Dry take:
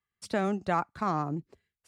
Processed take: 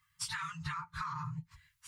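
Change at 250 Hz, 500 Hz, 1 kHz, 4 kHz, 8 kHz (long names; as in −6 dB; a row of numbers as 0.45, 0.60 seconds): −16.5 dB, below −40 dB, −9.5 dB, +3.5 dB, can't be measured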